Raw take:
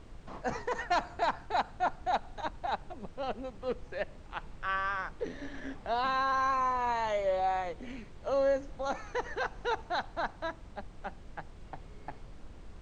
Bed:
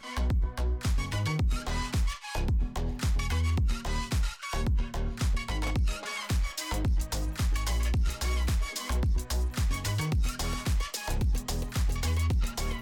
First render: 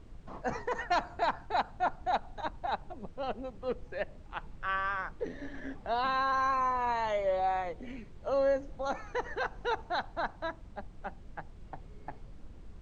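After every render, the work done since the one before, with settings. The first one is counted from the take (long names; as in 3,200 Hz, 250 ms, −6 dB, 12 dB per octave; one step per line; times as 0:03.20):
broadband denoise 6 dB, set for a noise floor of −50 dBFS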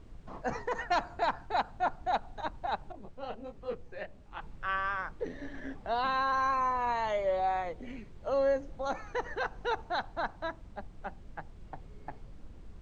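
0:02.92–0:04.41: micro pitch shift up and down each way 49 cents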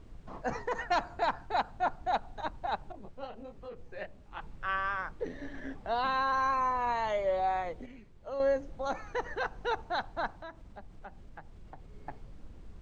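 0:03.26–0:03.86: downward compressor, threshold −40 dBFS
0:07.86–0:08.40: clip gain −7.5 dB
0:10.34–0:11.94: downward compressor 2 to 1, threshold −46 dBFS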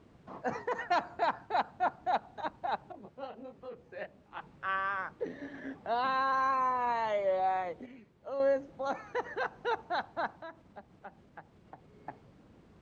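high-pass filter 140 Hz 12 dB per octave
high-shelf EQ 5,000 Hz −8 dB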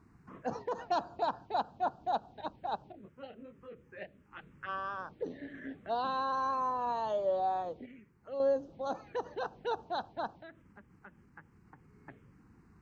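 phaser swept by the level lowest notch 530 Hz, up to 2,100 Hz, full sweep at −32 dBFS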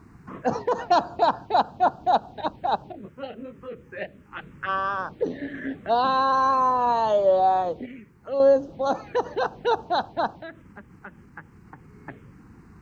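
level +12 dB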